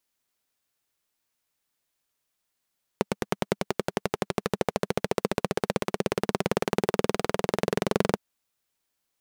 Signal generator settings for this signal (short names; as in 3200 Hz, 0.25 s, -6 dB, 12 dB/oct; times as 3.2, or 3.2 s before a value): single-cylinder engine model, changing speed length 5.16 s, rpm 1100, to 2700, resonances 200/410 Hz